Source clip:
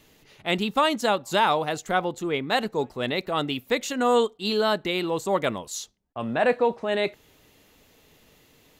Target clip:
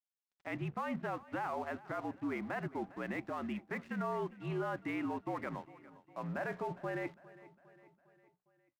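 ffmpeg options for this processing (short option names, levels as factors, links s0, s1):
-af "highpass=f=210:t=q:w=0.5412,highpass=f=210:t=q:w=1.307,lowpass=f=2200:t=q:w=0.5176,lowpass=f=2200:t=q:w=0.7071,lowpass=f=2200:t=q:w=1.932,afreqshift=-59,equalizer=f=460:w=3.4:g=-11.5,bandreject=f=60:t=h:w=6,bandreject=f=120:t=h:w=6,bandreject=f=180:t=h:w=6,bandreject=f=240:t=h:w=6,alimiter=limit=0.0708:level=0:latency=1:release=38,aeval=exprs='sgn(val(0))*max(abs(val(0))-0.00316,0)':c=same,aecho=1:1:406|812|1218|1624:0.112|0.0595|0.0315|0.0167,volume=0.501"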